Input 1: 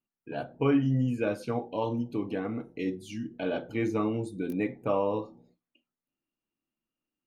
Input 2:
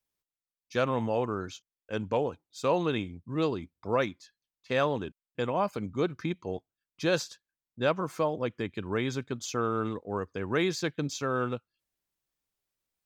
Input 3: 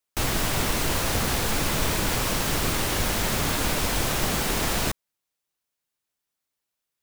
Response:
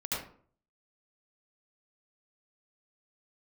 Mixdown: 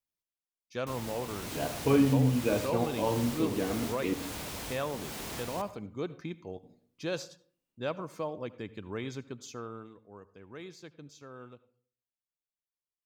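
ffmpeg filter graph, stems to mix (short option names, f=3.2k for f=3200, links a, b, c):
-filter_complex "[0:a]adelay=1250,volume=-0.5dB,asplit=3[a][b][c];[a]atrim=end=4.14,asetpts=PTS-STARTPTS,afade=t=out:st=4.136:d=0.004:c=hsin[d];[b]atrim=start=4.14:end=6.63,asetpts=PTS-STARTPTS,volume=0[e];[c]atrim=start=6.63,asetpts=PTS-STARTPTS,afade=t=in:d=0.004:c=hsin[f];[d][e][f]concat=n=3:v=0:a=1,asplit=2[g][h];[h]volume=-14.5dB[i];[1:a]volume=-7.5dB,afade=t=out:st=9.27:d=0.63:silence=0.298538,asplit=3[j][k][l];[k]volume=-21dB[m];[2:a]highpass=62,asoftclip=type=tanh:threshold=-21dB,adelay=700,volume=-12dB,asplit=2[n][o];[o]volume=-19dB[p];[l]apad=whole_len=340559[q];[n][q]sidechaincompress=threshold=-36dB:ratio=8:attack=29:release=436[r];[3:a]atrim=start_sample=2205[s];[i][m][p]amix=inputs=3:normalize=0[t];[t][s]afir=irnorm=-1:irlink=0[u];[g][j][r][u]amix=inputs=4:normalize=0,equalizer=f=1.5k:t=o:w=0.77:g=-2.5"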